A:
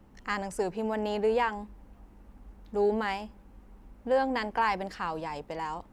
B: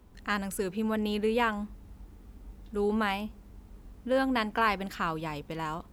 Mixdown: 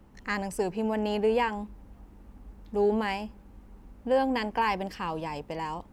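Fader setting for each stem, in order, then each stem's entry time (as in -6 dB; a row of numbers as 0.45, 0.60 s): +0.5, -9.5 dB; 0.00, 0.00 s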